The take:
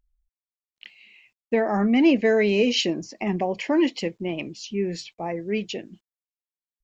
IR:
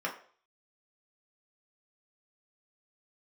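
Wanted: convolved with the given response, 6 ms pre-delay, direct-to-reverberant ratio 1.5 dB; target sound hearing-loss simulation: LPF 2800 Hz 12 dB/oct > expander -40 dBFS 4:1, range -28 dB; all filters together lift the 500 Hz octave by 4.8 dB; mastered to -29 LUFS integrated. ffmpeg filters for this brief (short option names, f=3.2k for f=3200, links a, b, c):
-filter_complex "[0:a]equalizer=f=500:t=o:g=6,asplit=2[a][b];[1:a]atrim=start_sample=2205,adelay=6[c];[b][c]afir=irnorm=-1:irlink=0,volume=-8dB[d];[a][d]amix=inputs=2:normalize=0,lowpass=2.8k,agate=range=-28dB:threshold=-40dB:ratio=4,volume=-9.5dB"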